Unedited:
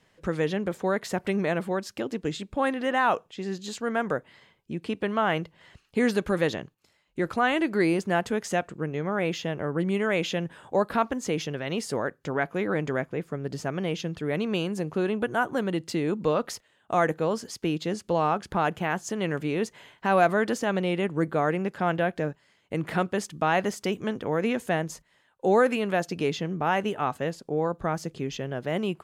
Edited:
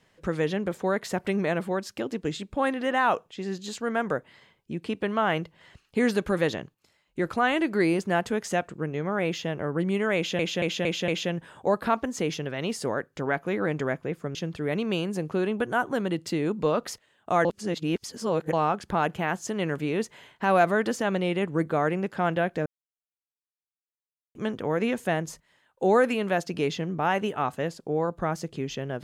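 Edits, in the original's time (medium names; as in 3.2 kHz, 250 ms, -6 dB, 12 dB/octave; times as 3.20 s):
10.16 s: stutter 0.23 s, 5 plays
13.43–13.97 s: delete
17.07–18.15 s: reverse
22.28–23.97 s: mute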